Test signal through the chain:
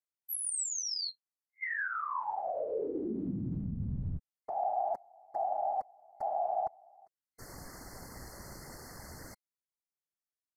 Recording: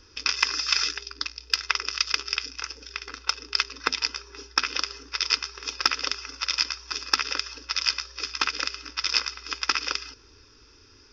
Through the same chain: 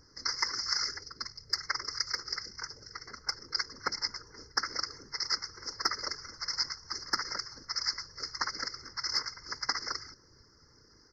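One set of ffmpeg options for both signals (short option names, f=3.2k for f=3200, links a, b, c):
-af "afftfilt=real='re*(1-between(b*sr/4096,2100,4200))':imag='im*(1-between(b*sr/4096,2100,4200))':win_size=4096:overlap=0.75,afftfilt=real='hypot(re,im)*cos(2*PI*random(0))':imag='hypot(re,im)*sin(2*PI*random(1))':win_size=512:overlap=0.75,aresample=32000,aresample=44100"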